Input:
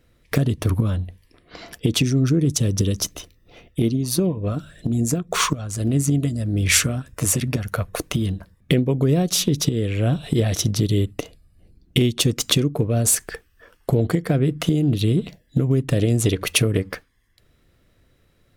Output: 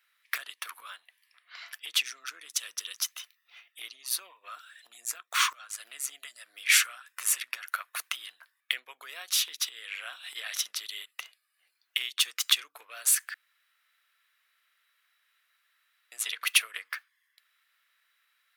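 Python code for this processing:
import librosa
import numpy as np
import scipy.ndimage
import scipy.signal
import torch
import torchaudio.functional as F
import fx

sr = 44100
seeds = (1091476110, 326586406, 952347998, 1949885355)

y = fx.band_squash(x, sr, depth_pct=40, at=(11.01, 11.98))
y = fx.edit(y, sr, fx.room_tone_fill(start_s=13.34, length_s=2.78), tone=tone)
y = scipy.signal.sosfilt(scipy.signal.butter(4, 1300.0, 'highpass', fs=sr, output='sos'), y)
y = fx.peak_eq(y, sr, hz=6700.0, db=-7.5, octaves=1.4)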